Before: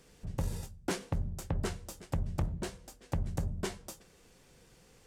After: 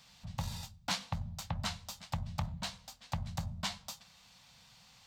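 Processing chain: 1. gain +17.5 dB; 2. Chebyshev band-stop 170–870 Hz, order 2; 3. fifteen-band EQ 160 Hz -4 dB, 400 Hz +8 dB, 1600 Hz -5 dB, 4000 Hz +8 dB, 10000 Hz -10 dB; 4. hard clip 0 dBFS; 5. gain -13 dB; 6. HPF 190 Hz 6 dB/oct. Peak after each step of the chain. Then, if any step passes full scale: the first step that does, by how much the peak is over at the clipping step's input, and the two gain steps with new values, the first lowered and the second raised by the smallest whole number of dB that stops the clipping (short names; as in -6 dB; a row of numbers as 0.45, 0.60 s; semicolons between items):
-1.0, -3.5, -3.5, -3.5, -16.5, -18.0 dBFS; no overload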